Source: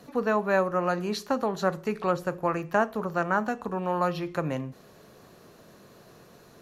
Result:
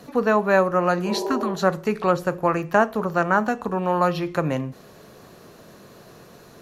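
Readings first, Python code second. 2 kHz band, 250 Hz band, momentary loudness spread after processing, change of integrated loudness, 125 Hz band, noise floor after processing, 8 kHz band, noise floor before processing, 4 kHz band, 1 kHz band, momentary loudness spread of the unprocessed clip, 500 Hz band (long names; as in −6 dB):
+6.0 dB, +6.0 dB, 6 LU, +6.0 dB, +6.0 dB, −48 dBFS, +6.0 dB, −54 dBFS, +6.0 dB, +6.0 dB, 6 LU, +6.0 dB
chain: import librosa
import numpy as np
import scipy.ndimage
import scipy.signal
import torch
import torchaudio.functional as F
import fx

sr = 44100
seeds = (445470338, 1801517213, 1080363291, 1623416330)

y = fx.spec_repair(x, sr, seeds[0], start_s=1.08, length_s=0.4, low_hz=320.0, high_hz=1000.0, source='after')
y = y * 10.0 ** (6.0 / 20.0)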